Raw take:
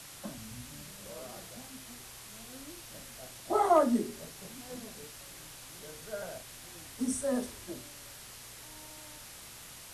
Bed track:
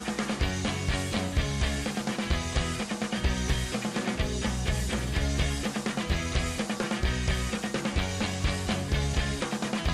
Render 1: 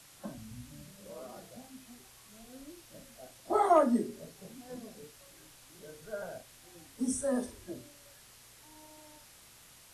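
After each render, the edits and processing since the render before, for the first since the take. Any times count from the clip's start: noise print and reduce 8 dB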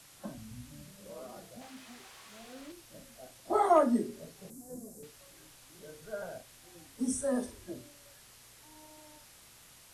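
1.61–2.72 overdrive pedal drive 17 dB, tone 2800 Hz, clips at -37.5 dBFS; 4.5–5.03 EQ curve 450 Hz 0 dB, 3200 Hz -21 dB, 7400 Hz +5 dB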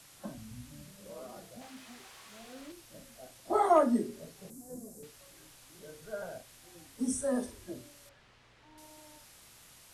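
8.09–8.78 LPF 2900 Hz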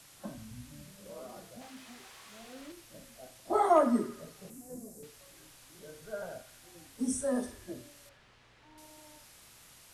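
narrowing echo 81 ms, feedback 72%, band-pass 2000 Hz, level -11.5 dB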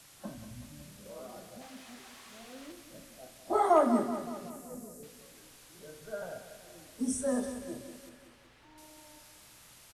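feedback echo 0.188 s, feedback 54%, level -10.5 dB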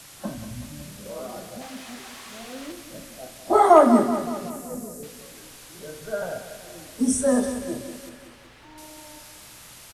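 gain +10.5 dB

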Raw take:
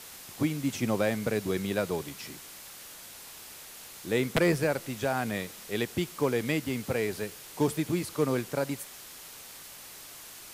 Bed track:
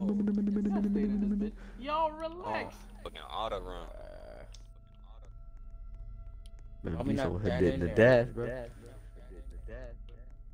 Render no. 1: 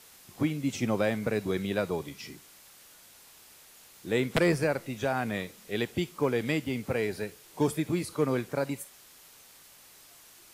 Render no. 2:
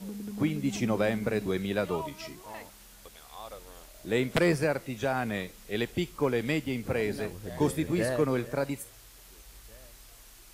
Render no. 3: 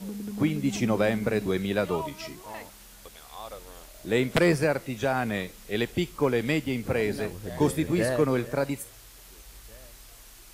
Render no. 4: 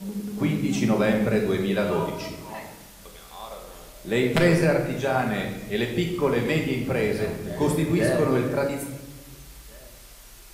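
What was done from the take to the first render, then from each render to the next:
noise print and reduce 8 dB
add bed track -8.5 dB
gain +3 dB
shoebox room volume 540 m³, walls mixed, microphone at 1.2 m

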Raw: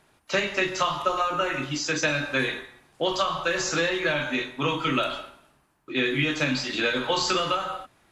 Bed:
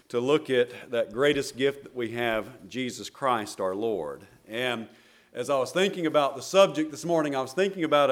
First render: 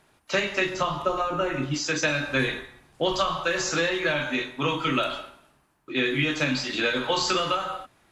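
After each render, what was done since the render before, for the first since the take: 0.74–1.74 tilt shelf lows +5.5 dB, about 710 Hz; 2.27–3.34 low shelf 150 Hz +9 dB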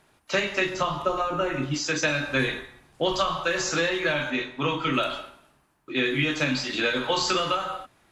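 4.3–4.94 air absorption 59 m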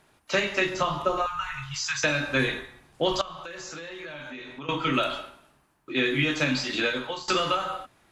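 1.26–2.04 elliptic band-stop 120–950 Hz; 3.21–4.69 compressor 8:1, threshold -36 dBFS; 6.79–7.28 fade out, to -21.5 dB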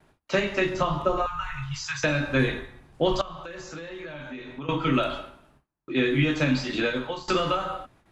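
gate with hold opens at -51 dBFS; tilt -2 dB/oct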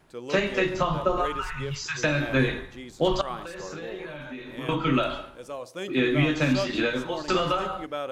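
add bed -11 dB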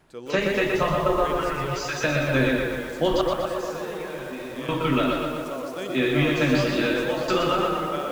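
tape echo 0.124 s, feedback 88%, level -5 dB, low-pass 2300 Hz; lo-fi delay 0.12 s, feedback 55%, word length 7-bit, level -6 dB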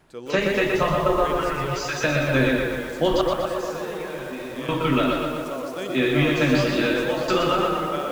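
gain +1.5 dB

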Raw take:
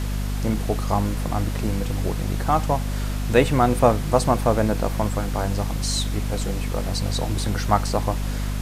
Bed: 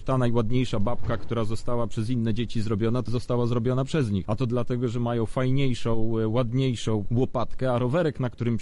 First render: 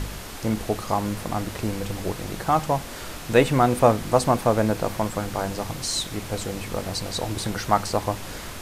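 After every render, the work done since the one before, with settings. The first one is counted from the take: de-hum 50 Hz, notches 5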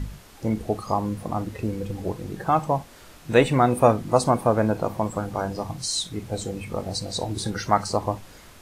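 noise print and reduce 12 dB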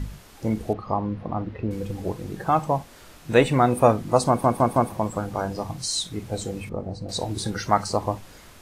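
0.73–1.71 air absorption 310 m; 4.28 stutter in place 0.16 s, 4 plays; 6.69–7.09 EQ curve 380 Hz 0 dB, 1500 Hz -9 dB, 13000 Hz -26 dB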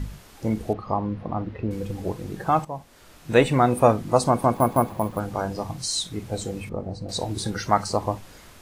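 2.65–3.35 fade in, from -13 dB; 4.54–5.2 careless resampling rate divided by 4×, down filtered, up hold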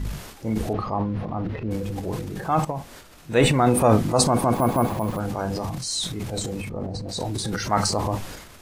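transient shaper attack -4 dB, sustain +10 dB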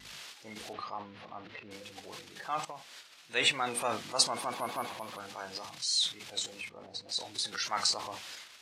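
band-pass 3600 Hz, Q 1; vibrato 3.4 Hz 50 cents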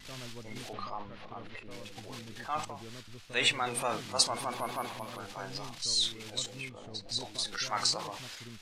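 add bed -23.5 dB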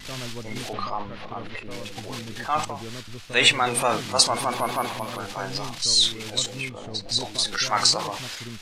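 gain +10 dB; limiter -3 dBFS, peak gain reduction 3 dB

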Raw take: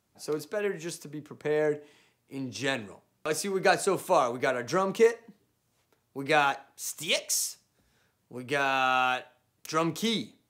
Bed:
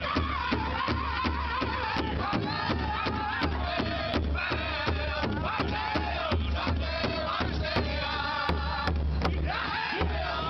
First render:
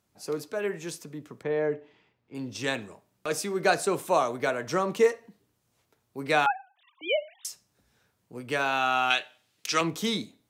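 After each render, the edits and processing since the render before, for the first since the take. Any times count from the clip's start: 1.43–2.35 air absorption 220 m; 6.46–7.45 sine-wave speech; 9.1–9.81 weighting filter D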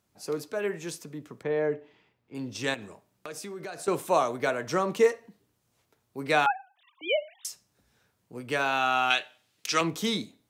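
2.74–3.88 compressor, threshold -36 dBFS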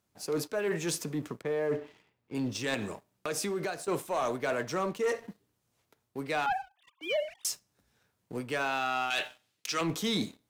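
reverse; compressor 5:1, threshold -35 dBFS, peak gain reduction 17 dB; reverse; sample leveller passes 2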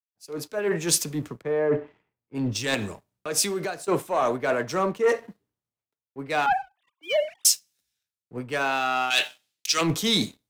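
AGC gain up to 6 dB; three-band expander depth 100%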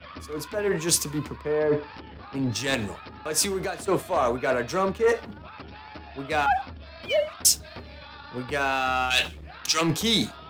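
add bed -13 dB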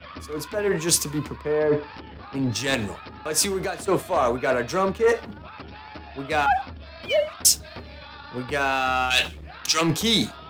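gain +2 dB

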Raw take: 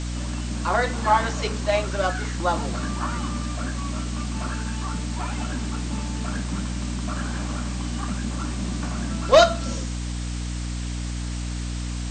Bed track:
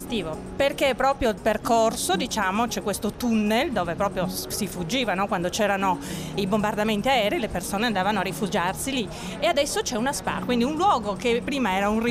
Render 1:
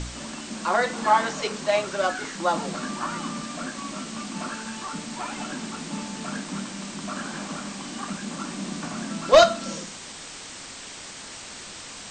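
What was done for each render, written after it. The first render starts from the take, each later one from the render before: de-hum 60 Hz, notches 5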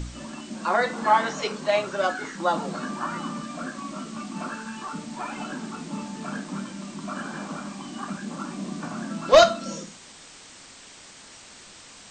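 noise print and reduce 7 dB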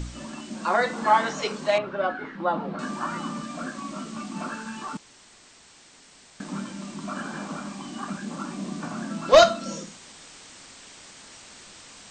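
1.78–2.79 air absorption 390 m; 4.97–6.4 room tone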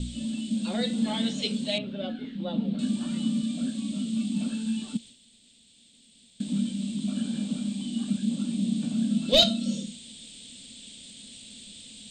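expander -46 dBFS; EQ curve 160 Hz 0 dB, 230 Hz +11 dB, 340 Hz -9 dB, 520 Hz -6 dB, 1100 Hz -26 dB, 1900 Hz -14 dB, 3500 Hz +9 dB, 5900 Hz -9 dB, 8900 Hz +7 dB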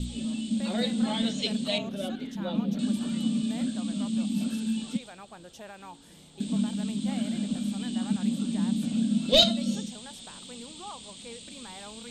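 add bed track -22.5 dB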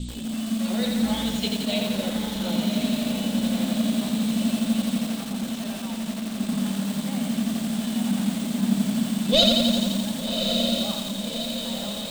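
on a send: diffused feedback echo 1.163 s, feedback 61%, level -4 dB; on the sum: lo-fi delay 86 ms, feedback 80%, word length 6-bit, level -3 dB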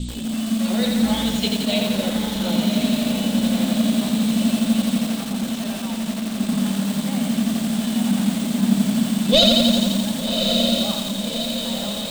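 gain +4.5 dB; limiter -3 dBFS, peak gain reduction 2.5 dB

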